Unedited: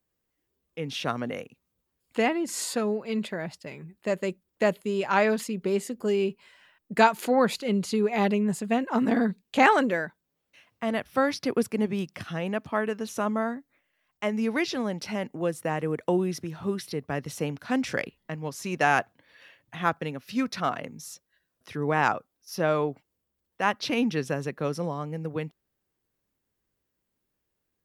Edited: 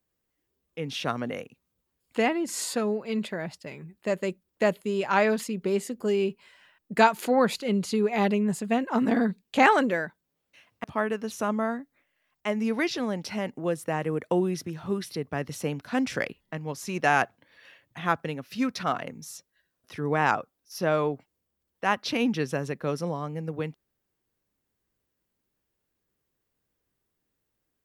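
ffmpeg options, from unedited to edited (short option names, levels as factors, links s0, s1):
-filter_complex "[0:a]asplit=2[s0][s1];[s0]atrim=end=10.842[s2];[s1]atrim=start=12.608[s3];[s2][s3]acrossfade=d=0.004:c1=hsin:c2=hsin"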